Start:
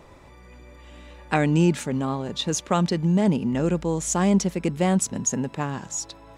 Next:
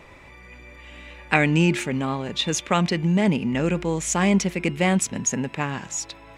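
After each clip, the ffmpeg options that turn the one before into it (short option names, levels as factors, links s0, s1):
-af "equalizer=f=2300:t=o:w=0.93:g=11.5,bandreject=f=354.1:t=h:w=4,bandreject=f=708.2:t=h:w=4,bandreject=f=1062.3:t=h:w=4,bandreject=f=1416.4:t=h:w=4,bandreject=f=1770.5:t=h:w=4,bandreject=f=2124.6:t=h:w=4,bandreject=f=2478.7:t=h:w=4,bandreject=f=2832.8:t=h:w=4,bandreject=f=3186.9:t=h:w=4,bandreject=f=3541:t=h:w=4"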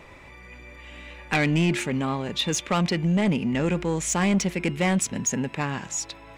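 -af "asoftclip=type=tanh:threshold=0.168"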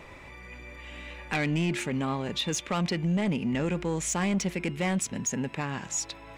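-af "alimiter=limit=0.0841:level=0:latency=1:release=459"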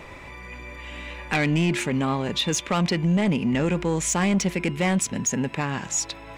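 -af "aeval=exprs='val(0)+0.00158*sin(2*PI*1000*n/s)':c=same,volume=1.88"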